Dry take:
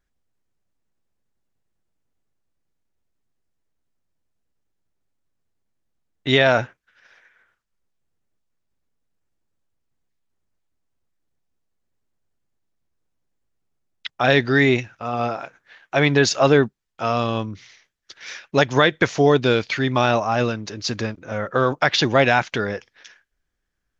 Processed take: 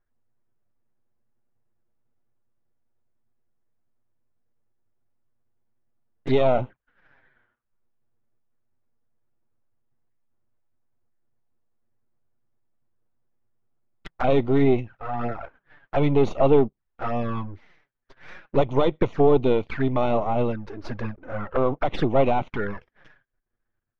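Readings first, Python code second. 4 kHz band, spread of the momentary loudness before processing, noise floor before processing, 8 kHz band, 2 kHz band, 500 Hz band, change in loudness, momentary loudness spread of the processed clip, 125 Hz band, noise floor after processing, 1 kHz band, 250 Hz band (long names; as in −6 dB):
−16.5 dB, 15 LU, −76 dBFS, can't be measured, −15.5 dB, −2.0 dB, −4.0 dB, 15 LU, −3.5 dB, −79 dBFS, −4.5 dB, −2.0 dB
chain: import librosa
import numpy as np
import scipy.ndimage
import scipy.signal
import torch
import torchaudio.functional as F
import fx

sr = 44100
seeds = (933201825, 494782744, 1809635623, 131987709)

y = np.where(x < 0.0, 10.0 ** (-12.0 / 20.0) * x, x)
y = scipy.signal.sosfilt(scipy.signal.butter(2, 1500.0, 'lowpass', fs=sr, output='sos'), y)
y = fx.env_flanger(y, sr, rest_ms=8.6, full_db=-21.5)
y = y * librosa.db_to_amplitude(4.0)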